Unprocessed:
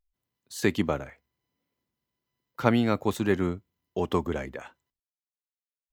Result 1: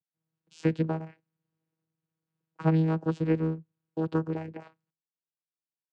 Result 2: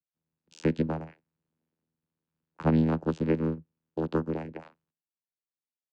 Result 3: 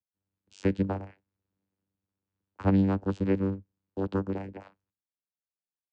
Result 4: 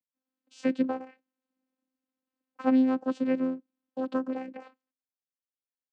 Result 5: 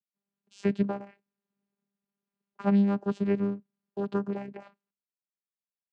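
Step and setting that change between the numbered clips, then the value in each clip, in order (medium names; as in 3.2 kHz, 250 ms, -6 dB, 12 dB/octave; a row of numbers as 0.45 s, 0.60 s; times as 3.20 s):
vocoder, frequency: 160 Hz, 80 Hz, 97 Hz, 260 Hz, 200 Hz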